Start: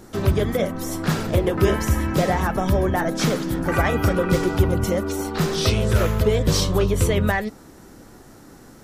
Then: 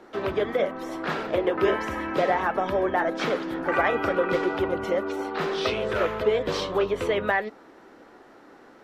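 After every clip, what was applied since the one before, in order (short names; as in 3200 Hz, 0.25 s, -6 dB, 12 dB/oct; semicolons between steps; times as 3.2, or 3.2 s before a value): three-band isolator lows -22 dB, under 300 Hz, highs -23 dB, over 3600 Hz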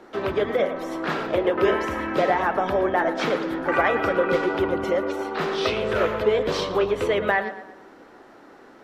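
tape echo 0.113 s, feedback 47%, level -10 dB, low-pass 2700 Hz; gain +2 dB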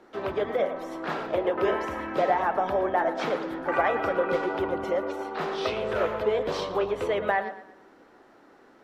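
dynamic EQ 760 Hz, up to +6 dB, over -34 dBFS, Q 1.2; gain -7 dB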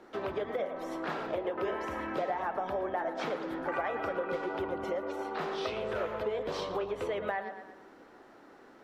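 compressor 2.5:1, threshold -34 dBFS, peak gain reduction 10.5 dB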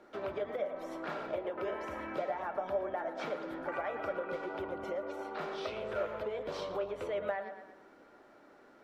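small resonant body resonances 600/1400/2300 Hz, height 10 dB, ringing for 95 ms; gain -5 dB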